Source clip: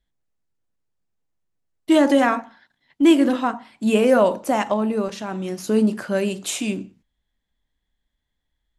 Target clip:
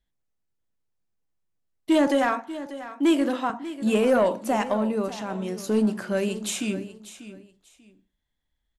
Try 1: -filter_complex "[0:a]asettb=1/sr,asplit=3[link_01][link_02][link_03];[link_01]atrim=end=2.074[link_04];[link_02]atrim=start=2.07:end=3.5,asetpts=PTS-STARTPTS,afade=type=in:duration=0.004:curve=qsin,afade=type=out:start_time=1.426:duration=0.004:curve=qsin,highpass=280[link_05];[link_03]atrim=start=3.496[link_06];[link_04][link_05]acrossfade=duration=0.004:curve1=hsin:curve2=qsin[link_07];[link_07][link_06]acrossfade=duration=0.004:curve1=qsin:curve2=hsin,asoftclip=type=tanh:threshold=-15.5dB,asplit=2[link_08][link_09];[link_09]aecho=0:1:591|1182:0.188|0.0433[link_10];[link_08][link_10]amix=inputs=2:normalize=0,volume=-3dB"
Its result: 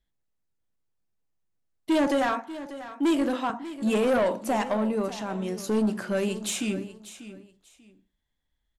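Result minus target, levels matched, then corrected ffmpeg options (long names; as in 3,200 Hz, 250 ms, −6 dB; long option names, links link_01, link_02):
soft clipping: distortion +9 dB
-filter_complex "[0:a]asettb=1/sr,asplit=3[link_01][link_02][link_03];[link_01]atrim=end=2.074[link_04];[link_02]atrim=start=2.07:end=3.5,asetpts=PTS-STARTPTS,afade=type=in:duration=0.004:curve=qsin,afade=type=out:start_time=1.426:duration=0.004:curve=qsin,highpass=280[link_05];[link_03]atrim=start=3.496[link_06];[link_04][link_05]acrossfade=duration=0.004:curve1=hsin:curve2=qsin[link_07];[link_07][link_06]acrossfade=duration=0.004:curve1=qsin:curve2=hsin,asoftclip=type=tanh:threshold=-8.5dB,asplit=2[link_08][link_09];[link_09]aecho=0:1:591|1182:0.188|0.0433[link_10];[link_08][link_10]amix=inputs=2:normalize=0,volume=-3dB"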